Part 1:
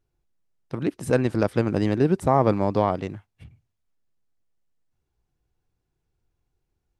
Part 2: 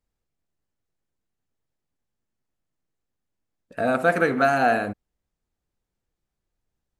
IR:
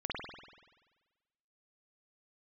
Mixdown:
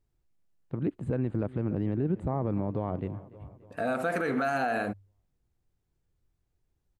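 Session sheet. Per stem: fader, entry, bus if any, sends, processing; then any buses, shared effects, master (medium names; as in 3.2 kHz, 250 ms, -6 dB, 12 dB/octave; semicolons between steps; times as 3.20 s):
-11.0 dB, 0.00 s, no send, echo send -21.5 dB, boxcar filter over 8 samples; bass shelf 420 Hz +11 dB
-2.0 dB, 0.00 s, no send, no echo send, de-hum 49.17 Hz, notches 2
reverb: none
echo: feedback delay 288 ms, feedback 56%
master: peak limiter -20 dBFS, peak gain reduction 11 dB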